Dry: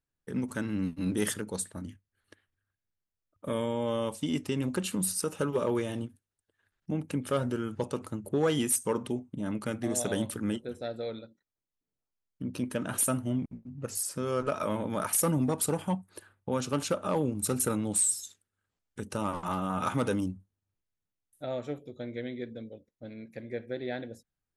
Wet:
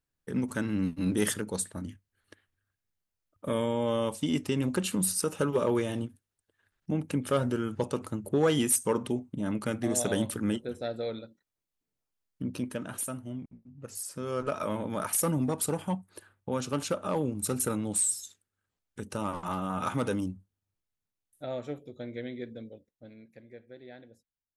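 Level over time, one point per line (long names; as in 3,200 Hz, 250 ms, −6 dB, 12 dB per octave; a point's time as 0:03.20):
0:12.43 +2 dB
0:13.09 −8 dB
0:13.71 −8 dB
0:14.48 −1 dB
0:22.68 −1 dB
0:23.60 −13 dB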